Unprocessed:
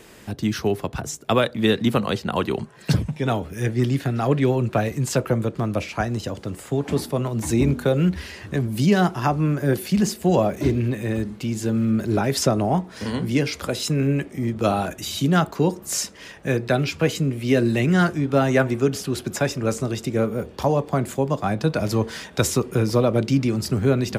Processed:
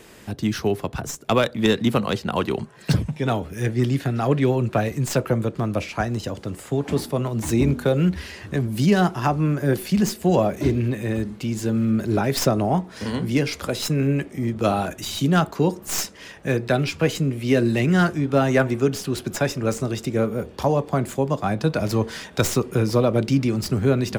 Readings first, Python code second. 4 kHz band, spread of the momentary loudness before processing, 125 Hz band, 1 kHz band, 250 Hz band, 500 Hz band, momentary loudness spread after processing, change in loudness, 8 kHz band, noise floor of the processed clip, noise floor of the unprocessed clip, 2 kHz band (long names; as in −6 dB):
0.0 dB, 7 LU, 0.0 dB, 0.0 dB, 0.0 dB, 0.0 dB, 7 LU, 0.0 dB, −1.0 dB, −43 dBFS, −43 dBFS, 0.0 dB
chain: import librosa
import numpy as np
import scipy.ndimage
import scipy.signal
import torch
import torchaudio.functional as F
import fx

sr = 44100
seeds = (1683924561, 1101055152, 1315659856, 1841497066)

y = fx.tracing_dist(x, sr, depth_ms=0.054)